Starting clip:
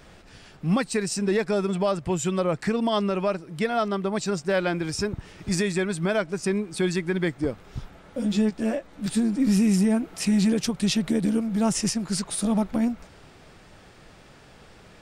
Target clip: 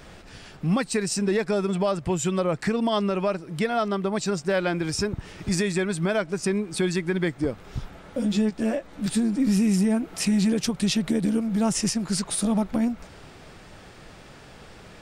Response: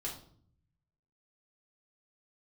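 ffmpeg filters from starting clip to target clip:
-af "acompressor=threshold=-31dB:ratio=1.5,volume=4dB"

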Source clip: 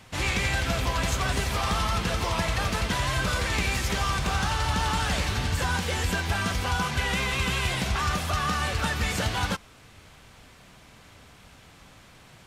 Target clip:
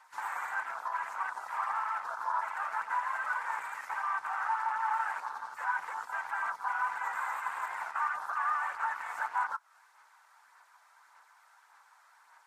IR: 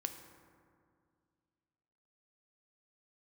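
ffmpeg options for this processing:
-filter_complex "[0:a]afwtdn=0.0355,aphaser=in_gain=1:out_gain=1:delay=1.6:decay=0.33:speed=1.7:type=sinusoidal,acompressor=threshold=-34dB:ratio=6,acrossover=split=2400[link_01][link_02];[link_01]aeval=exprs='(tanh(89.1*val(0)+0.45)-tanh(0.45))/89.1':channel_layout=same[link_03];[link_02]aeval=exprs='0.0168*sin(PI/2*5.01*val(0)/0.0168)':channel_layout=same[link_04];[link_03][link_04]amix=inputs=2:normalize=0,highpass=frequency=910:width_type=q:width=6.8,highshelf=frequency=2100:width_type=q:width=3:gain=-12,volume=-2.5dB" -ar 44100 -c:a libvorbis -b:a 48k

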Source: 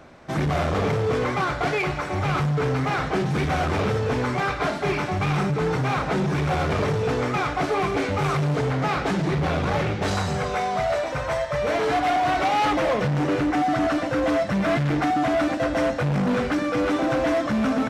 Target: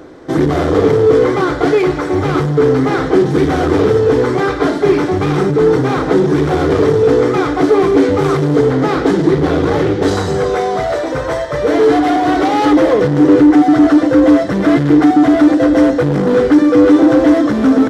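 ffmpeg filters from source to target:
ffmpeg -i in.wav -filter_complex "[0:a]superequalizer=6b=3.98:7b=3.16:12b=0.501,asplit=2[link_01][link_02];[link_02]acontrast=68,volume=-1dB[link_03];[link_01][link_03]amix=inputs=2:normalize=0,volume=-3dB" out.wav

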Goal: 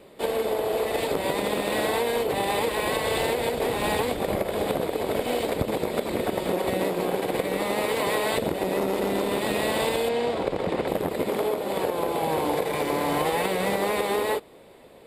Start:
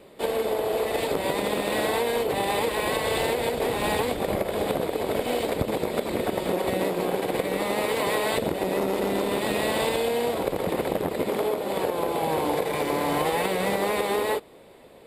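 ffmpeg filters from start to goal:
ffmpeg -i in.wav -filter_complex "[0:a]asettb=1/sr,asplit=3[link_01][link_02][link_03];[link_01]atrim=end=10.094[link_04];[link_02]atrim=start=10.09:end=10.88,asetpts=PTS-STARTPTS,afade=type=in:duration=0.004:curve=qsin,afade=type=out:start_time=0.786:duration=0.004:curve=qsin,lowpass=6000[link_05];[link_03]atrim=start=10.876[link_06];[link_04][link_05]acrossfade=duration=0.004:curve1=hsin:curve2=qsin[link_07];[link_07][link_06]acrossfade=duration=0.004:curve1=qsin:curve2=hsin" out.wav

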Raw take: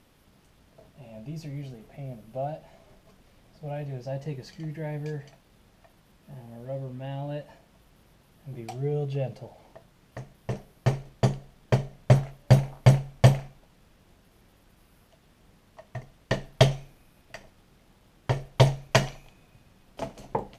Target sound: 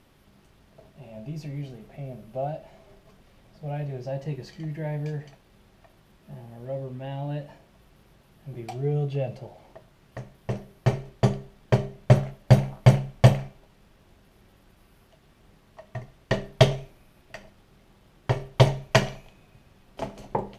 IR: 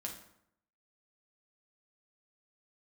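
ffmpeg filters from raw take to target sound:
-filter_complex "[0:a]asplit=2[link_01][link_02];[1:a]atrim=start_sample=2205,asetrate=83790,aresample=44100,lowpass=5400[link_03];[link_02][link_03]afir=irnorm=-1:irlink=0,volume=1dB[link_04];[link_01][link_04]amix=inputs=2:normalize=0,volume=-1dB"

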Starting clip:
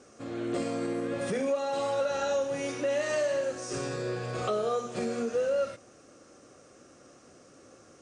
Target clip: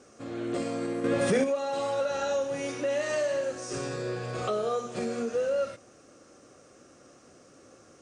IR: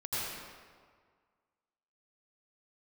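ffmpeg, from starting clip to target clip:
-filter_complex "[0:a]asettb=1/sr,asplit=3[link_01][link_02][link_03];[link_01]atrim=end=1.044[link_04];[link_02]atrim=start=1.04:end=1.44,asetpts=PTS-STARTPTS,afade=type=in:duration=0.004:curve=qsin,afade=type=out:start_time=0.396:duration=0.004:curve=qsin,acontrast=67[link_05];[link_03]atrim=start=1.436[link_06];[link_04][link_05]acrossfade=duration=0.004:curve1=hsin:curve2=qsin[link_07];[link_07][link_06]acrossfade=duration=0.004:curve1=qsin:curve2=hsin"

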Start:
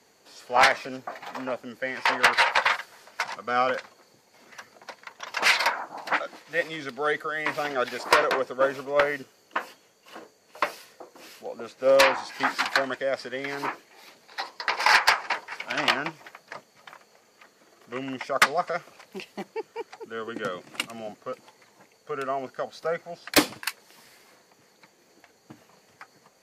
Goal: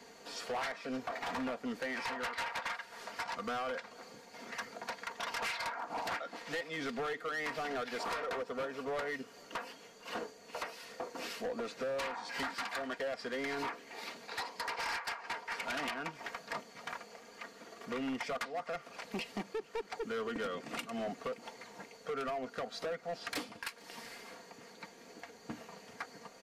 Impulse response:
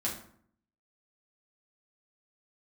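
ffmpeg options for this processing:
-filter_complex "[0:a]highshelf=frequency=8300:gain=-10,aecho=1:1:4.3:0.48,acompressor=threshold=-36dB:ratio=20,atempo=1,asoftclip=type=hard:threshold=-38.5dB,asplit=2[link_01][link_02];[link_02]aecho=0:1:452:0.0631[link_03];[link_01][link_03]amix=inputs=2:normalize=0,aresample=32000,aresample=44100,volume=5dB"

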